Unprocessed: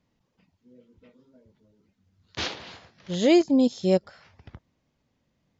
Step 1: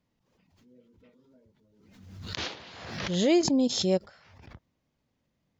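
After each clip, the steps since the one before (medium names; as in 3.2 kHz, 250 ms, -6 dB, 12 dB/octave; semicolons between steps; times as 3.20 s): swell ahead of each attack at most 48 dB/s; trim -4.5 dB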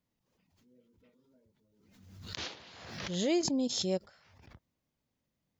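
treble shelf 6.8 kHz +8.5 dB; trim -7 dB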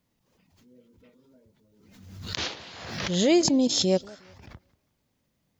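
modulated delay 181 ms, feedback 33%, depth 199 cents, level -23 dB; trim +9 dB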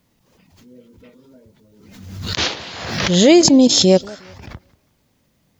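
loudness maximiser +12.5 dB; trim -1 dB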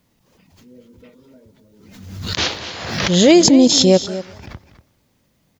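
delay 240 ms -14 dB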